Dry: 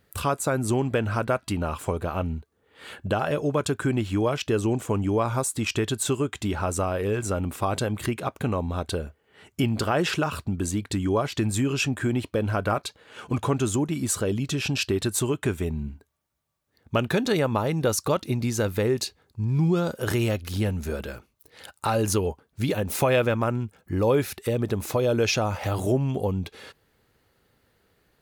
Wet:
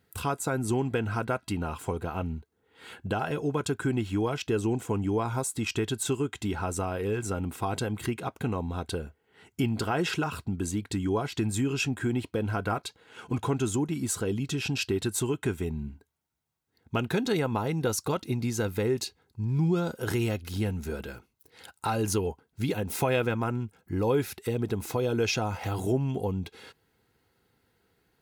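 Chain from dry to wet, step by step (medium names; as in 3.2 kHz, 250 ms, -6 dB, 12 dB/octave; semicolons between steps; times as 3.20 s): comb of notches 590 Hz; trim -3 dB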